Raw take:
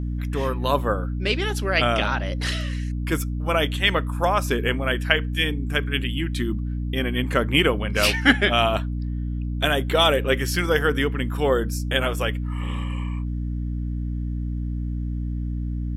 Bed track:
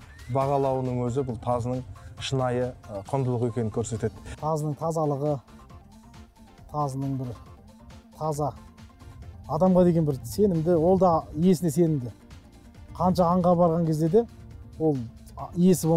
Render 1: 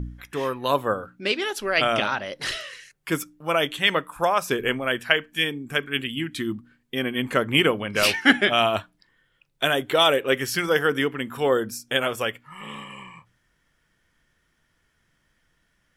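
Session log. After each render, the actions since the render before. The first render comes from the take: de-hum 60 Hz, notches 5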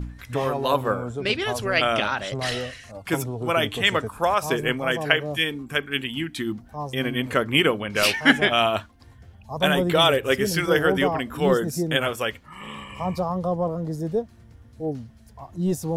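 add bed track -4.5 dB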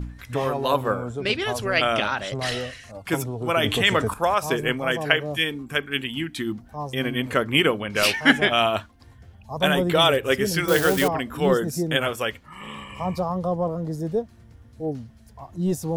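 3.64–4.14 fast leveller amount 50%; 10.68–11.08 switching spikes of -16.5 dBFS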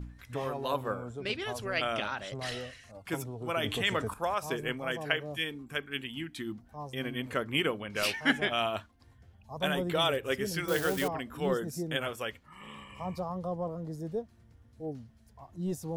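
gain -10 dB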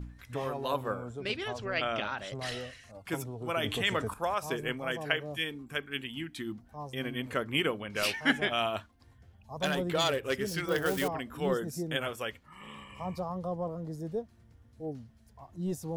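1.48–2.18 running mean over 4 samples; 9.61–10.86 self-modulated delay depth 0.075 ms

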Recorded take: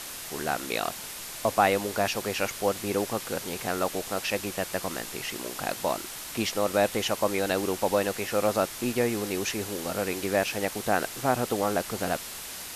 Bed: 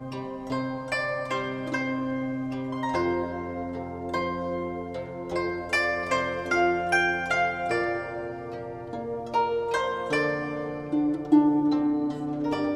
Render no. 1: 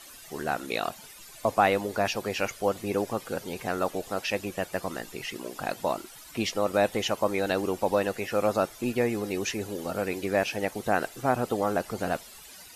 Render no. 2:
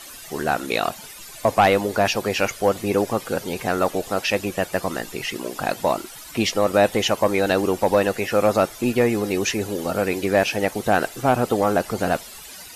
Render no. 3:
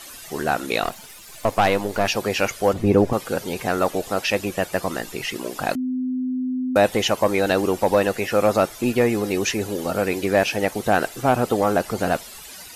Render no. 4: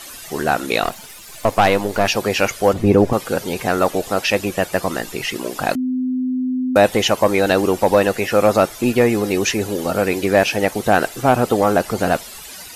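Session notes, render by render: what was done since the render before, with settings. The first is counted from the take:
denoiser 14 dB, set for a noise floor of -39 dBFS
sine folder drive 4 dB, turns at -7.5 dBFS
0.83–2.08 half-wave gain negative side -7 dB; 2.73–3.13 tilt -3 dB/oct; 5.75–6.76 bleep 255 Hz -21.5 dBFS
gain +4 dB; limiter -2 dBFS, peak gain reduction 1.5 dB

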